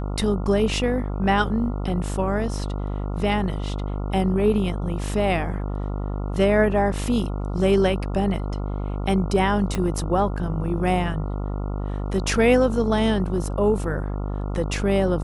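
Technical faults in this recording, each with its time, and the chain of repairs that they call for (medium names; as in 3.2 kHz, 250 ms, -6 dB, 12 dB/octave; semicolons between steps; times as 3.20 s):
buzz 50 Hz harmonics 28 -27 dBFS
9.75 s: pop -12 dBFS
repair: de-click; de-hum 50 Hz, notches 28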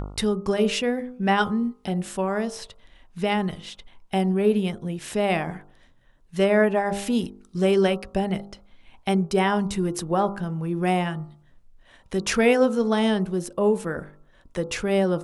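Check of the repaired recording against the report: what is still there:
9.75 s: pop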